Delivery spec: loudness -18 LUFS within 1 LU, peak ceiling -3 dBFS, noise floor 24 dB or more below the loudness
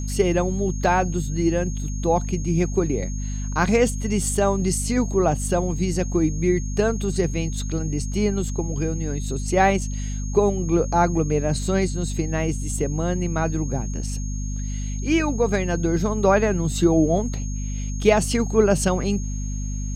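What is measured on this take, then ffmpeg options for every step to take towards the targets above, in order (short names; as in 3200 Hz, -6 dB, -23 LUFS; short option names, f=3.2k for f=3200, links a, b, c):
hum 50 Hz; harmonics up to 250 Hz; hum level -25 dBFS; steady tone 6500 Hz; tone level -38 dBFS; loudness -23.0 LUFS; peak -4.0 dBFS; loudness target -18.0 LUFS
-> -af "bandreject=f=50:t=h:w=4,bandreject=f=100:t=h:w=4,bandreject=f=150:t=h:w=4,bandreject=f=200:t=h:w=4,bandreject=f=250:t=h:w=4"
-af "bandreject=f=6.5k:w=30"
-af "volume=5dB,alimiter=limit=-3dB:level=0:latency=1"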